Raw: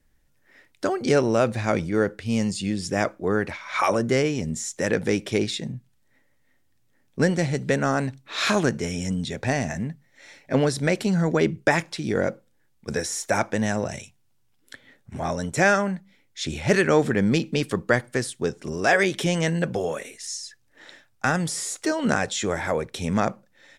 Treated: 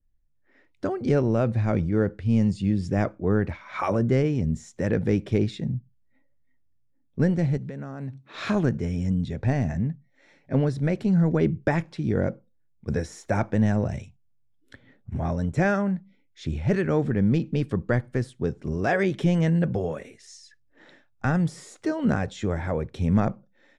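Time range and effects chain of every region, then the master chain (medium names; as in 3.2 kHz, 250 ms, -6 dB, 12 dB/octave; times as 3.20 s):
7.57–8.34 s: high-pass 94 Hz + compression 2.5:1, threshold -36 dBFS
whole clip: RIAA curve playback; spectral noise reduction 14 dB; level rider gain up to 4 dB; trim -8 dB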